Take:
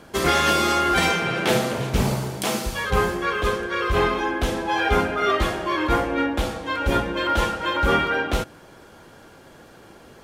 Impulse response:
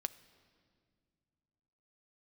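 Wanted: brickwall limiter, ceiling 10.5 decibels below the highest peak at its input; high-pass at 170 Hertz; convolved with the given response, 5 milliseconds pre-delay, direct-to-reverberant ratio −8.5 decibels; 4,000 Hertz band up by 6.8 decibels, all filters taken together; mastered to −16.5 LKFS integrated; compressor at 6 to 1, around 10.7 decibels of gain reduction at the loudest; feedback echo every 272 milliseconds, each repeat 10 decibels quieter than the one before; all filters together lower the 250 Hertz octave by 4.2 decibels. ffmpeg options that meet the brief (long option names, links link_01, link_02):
-filter_complex "[0:a]highpass=170,equalizer=frequency=250:width_type=o:gain=-5,equalizer=frequency=4000:width_type=o:gain=9,acompressor=threshold=-26dB:ratio=6,alimiter=limit=-20.5dB:level=0:latency=1,aecho=1:1:272|544|816|1088:0.316|0.101|0.0324|0.0104,asplit=2[link_01][link_02];[1:a]atrim=start_sample=2205,adelay=5[link_03];[link_02][link_03]afir=irnorm=-1:irlink=0,volume=9.5dB[link_04];[link_01][link_04]amix=inputs=2:normalize=0,volume=3.5dB"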